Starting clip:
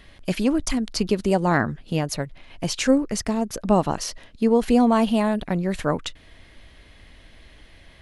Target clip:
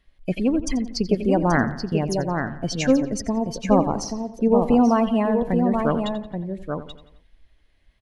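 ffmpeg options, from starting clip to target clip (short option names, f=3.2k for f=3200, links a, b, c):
-filter_complex "[0:a]asplit=2[a][b];[b]aecho=0:1:831:0.562[c];[a][c]amix=inputs=2:normalize=0,afftdn=nr=19:nf=-28,asplit=2[d][e];[e]adelay=87,lowpass=f=5k:p=1,volume=-13.5dB,asplit=2[f][g];[g]adelay=87,lowpass=f=5k:p=1,volume=0.52,asplit=2[h][i];[i]adelay=87,lowpass=f=5k:p=1,volume=0.52,asplit=2[j][k];[k]adelay=87,lowpass=f=5k:p=1,volume=0.52,asplit=2[l][m];[m]adelay=87,lowpass=f=5k:p=1,volume=0.52[n];[f][h][j][l][n]amix=inputs=5:normalize=0[o];[d][o]amix=inputs=2:normalize=0"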